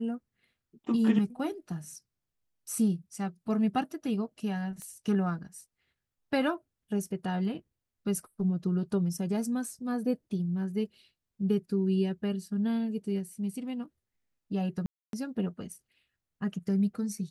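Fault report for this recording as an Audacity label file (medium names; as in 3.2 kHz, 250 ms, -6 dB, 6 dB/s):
4.820000	4.820000	pop -29 dBFS
14.860000	15.130000	dropout 272 ms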